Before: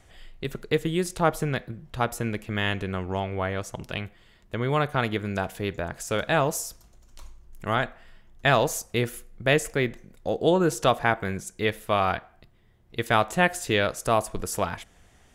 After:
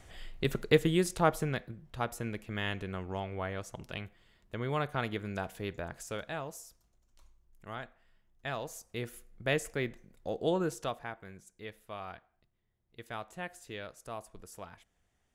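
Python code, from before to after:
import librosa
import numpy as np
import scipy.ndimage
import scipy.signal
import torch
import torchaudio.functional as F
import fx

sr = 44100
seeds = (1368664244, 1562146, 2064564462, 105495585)

y = fx.gain(x, sr, db=fx.line((0.6, 1.0), (1.81, -8.5), (5.98, -8.5), (6.41, -17.0), (8.63, -17.0), (9.31, -9.0), (10.6, -9.0), (11.12, -19.5)))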